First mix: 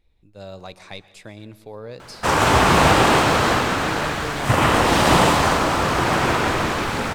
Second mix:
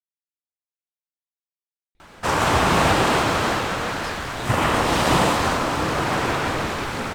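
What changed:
speech: entry +1.95 s; reverb: off

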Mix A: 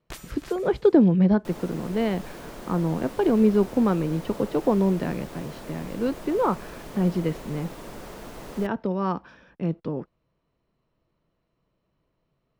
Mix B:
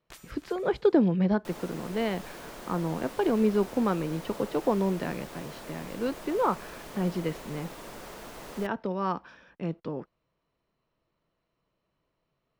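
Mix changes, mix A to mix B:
first sound -7.5 dB; master: add low shelf 460 Hz -7.5 dB

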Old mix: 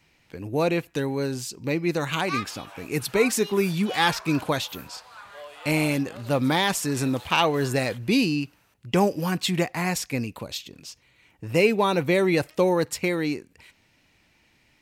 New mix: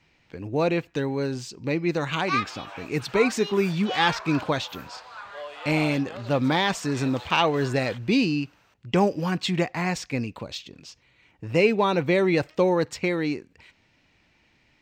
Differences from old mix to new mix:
background +4.5 dB; master: add running mean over 4 samples

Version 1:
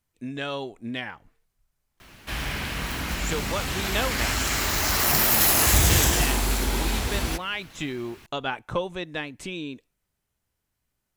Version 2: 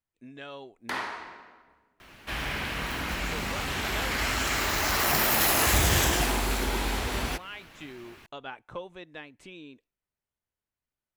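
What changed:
speech -10.5 dB; first sound: unmuted; reverb: on; master: add tone controls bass -5 dB, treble -6 dB

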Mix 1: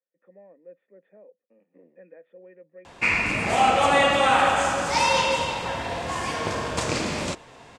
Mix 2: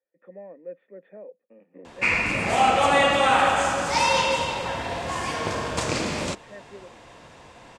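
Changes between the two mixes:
speech +8.5 dB; background: entry -1.00 s

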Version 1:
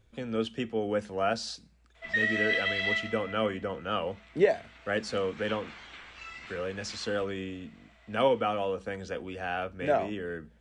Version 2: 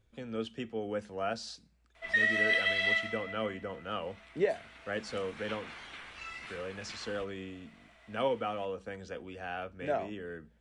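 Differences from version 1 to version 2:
speech -6.0 dB; background: remove elliptic low-pass 7900 Hz

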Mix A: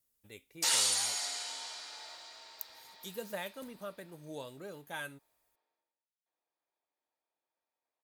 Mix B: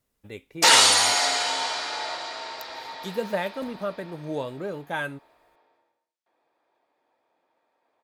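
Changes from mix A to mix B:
background +8.5 dB; master: remove pre-emphasis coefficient 0.8

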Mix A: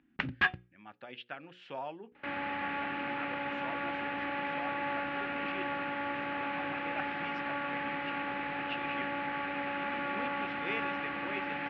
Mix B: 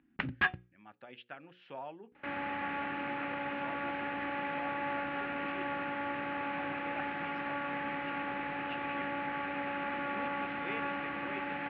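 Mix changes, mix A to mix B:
speech -3.0 dB; master: add air absorption 180 m

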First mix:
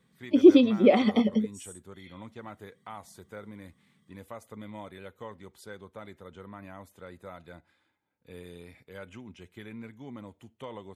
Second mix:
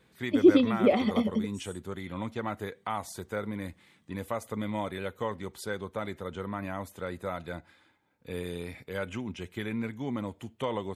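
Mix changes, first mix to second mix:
speech +9.5 dB; background -3.5 dB

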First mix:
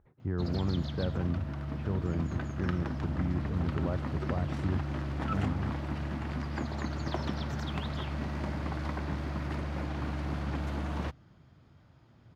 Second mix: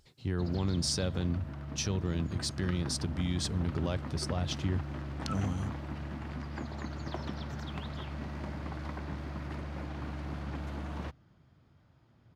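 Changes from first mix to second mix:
speech: remove LPF 1600 Hz 24 dB/oct; background -4.5 dB

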